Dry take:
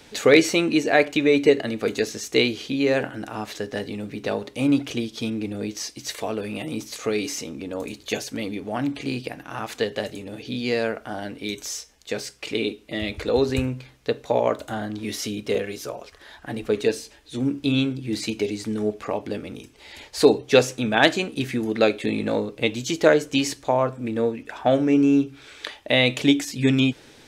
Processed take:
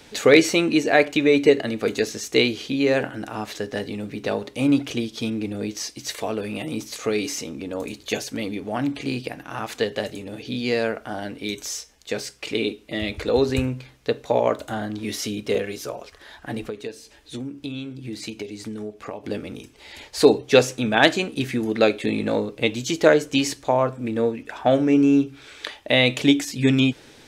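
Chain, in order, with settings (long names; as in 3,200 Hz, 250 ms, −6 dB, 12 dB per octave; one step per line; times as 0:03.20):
0:16.66–0:19.24: downward compressor 6 to 1, threshold −31 dBFS, peak gain reduction 15 dB
level +1 dB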